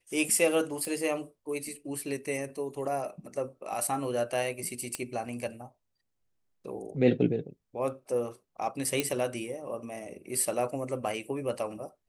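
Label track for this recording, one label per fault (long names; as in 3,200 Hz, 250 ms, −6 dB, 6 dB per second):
0.850000	0.850000	click −22 dBFS
4.950000	4.950000	click −16 dBFS
9.000000	9.000000	click −12 dBFS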